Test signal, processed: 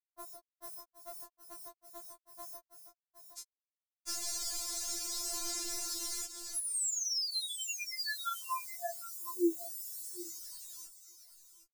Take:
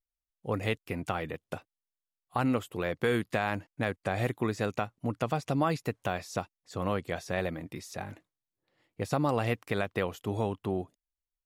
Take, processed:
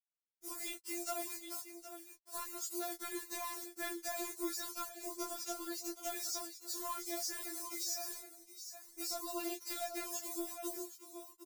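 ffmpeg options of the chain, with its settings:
-af "lowshelf=f=82:g=-7.5,acontrast=44,lowpass=6.1k,acrusher=bits=7:mix=0:aa=0.000001,aecho=1:1:766:0.211,aphaser=in_gain=1:out_gain=1:delay=4.3:decay=0.28:speed=0.18:type=sinusoidal,aexciter=amount=8.7:drive=8:freq=4.5k,acompressor=threshold=-23dB:ratio=6,flanger=delay=18:depth=7.3:speed=0.67,afftfilt=real='re*4*eq(mod(b,16),0)':imag='im*4*eq(mod(b,16),0)':win_size=2048:overlap=0.75,volume=-7dB"

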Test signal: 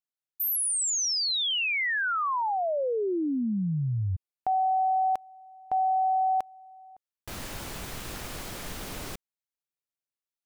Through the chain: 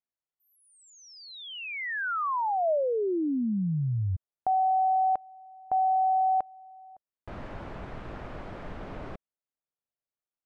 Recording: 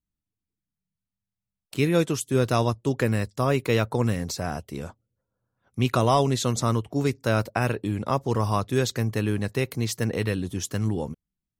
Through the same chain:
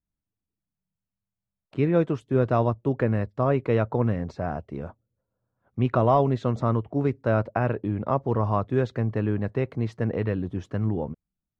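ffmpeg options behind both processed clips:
-af "lowpass=1.5k,equalizer=f=630:t=o:w=0.3:g=3.5"

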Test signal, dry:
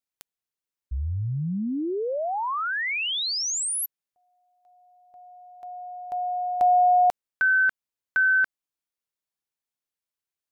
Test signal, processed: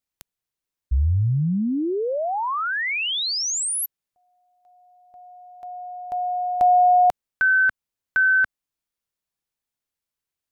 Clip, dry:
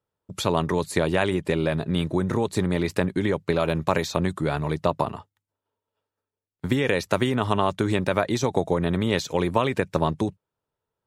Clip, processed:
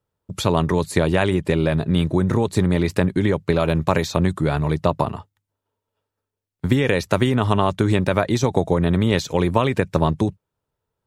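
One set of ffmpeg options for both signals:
-af "lowshelf=f=150:g=8,volume=2.5dB"

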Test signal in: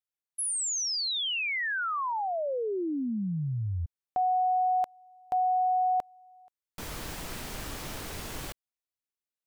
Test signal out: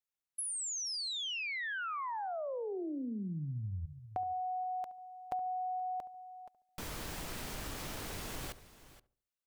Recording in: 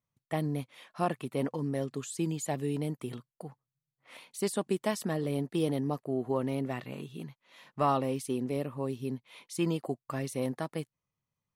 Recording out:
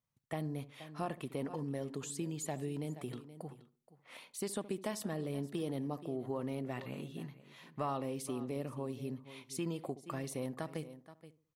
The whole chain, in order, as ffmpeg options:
-filter_complex "[0:a]asplit=2[a][b];[b]aecho=0:1:475:0.119[c];[a][c]amix=inputs=2:normalize=0,acompressor=threshold=-43dB:ratio=2:attack=96:release=49:detection=rms,asplit=2[d][e];[e]adelay=71,lowpass=f=900:p=1,volume=-14.5dB,asplit=2[f][g];[g]adelay=71,lowpass=f=900:p=1,volume=0.39,asplit=2[h][i];[i]adelay=71,lowpass=f=900:p=1,volume=0.39,asplit=2[j][k];[k]adelay=71,lowpass=f=900:p=1,volume=0.39[l];[f][h][j][l]amix=inputs=4:normalize=0[m];[d][m]amix=inputs=2:normalize=0,volume=-2dB"

